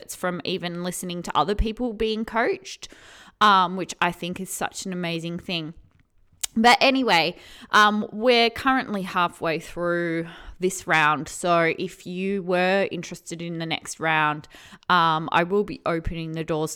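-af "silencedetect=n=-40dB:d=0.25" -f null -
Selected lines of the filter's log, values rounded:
silence_start: 5.78
silence_end: 6.41 | silence_duration: 0.63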